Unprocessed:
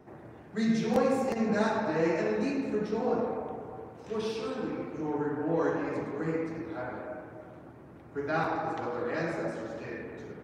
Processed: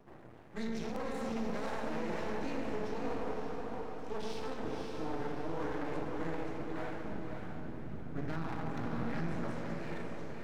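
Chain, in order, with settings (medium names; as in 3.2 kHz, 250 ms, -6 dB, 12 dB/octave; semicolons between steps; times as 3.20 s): 7.03–9.43 s: resonant low shelf 290 Hz +10 dB, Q 3; peak limiter -25 dBFS, peak gain reduction 11.5 dB; half-wave rectifier; echo that smears into a reverb 554 ms, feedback 42%, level -4 dB; trim -2 dB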